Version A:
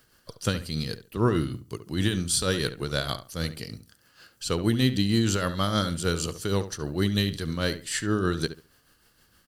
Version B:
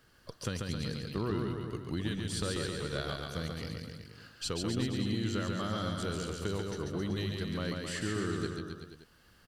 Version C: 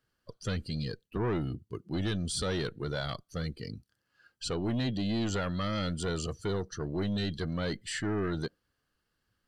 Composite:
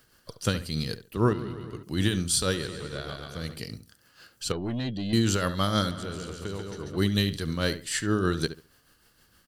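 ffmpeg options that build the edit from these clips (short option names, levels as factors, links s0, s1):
-filter_complex "[1:a]asplit=3[s0][s1][s2];[0:a]asplit=5[s3][s4][s5][s6][s7];[s3]atrim=end=1.332[s8];[s0]atrim=start=1.328:end=1.832[s9];[s4]atrim=start=1.828:end=2.7[s10];[s1]atrim=start=2.46:end=3.61[s11];[s5]atrim=start=3.37:end=4.522[s12];[2:a]atrim=start=4.518:end=5.132[s13];[s6]atrim=start=5.128:end=5.912[s14];[s2]atrim=start=5.908:end=6.972[s15];[s7]atrim=start=6.968[s16];[s8][s9]acrossfade=d=0.004:c1=hsin:c2=hsin[s17];[s17][s10]acrossfade=d=0.004:c1=hsin:c2=hsin[s18];[s18][s11]acrossfade=d=0.24:c1=tri:c2=tri[s19];[s19][s12]acrossfade=d=0.24:c1=tri:c2=tri[s20];[s20][s13]acrossfade=d=0.004:c1=hsin:c2=hsin[s21];[s21][s14]acrossfade=d=0.004:c1=hsin:c2=hsin[s22];[s22][s15]acrossfade=d=0.004:c1=hsin:c2=hsin[s23];[s23][s16]acrossfade=d=0.004:c1=hsin:c2=hsin"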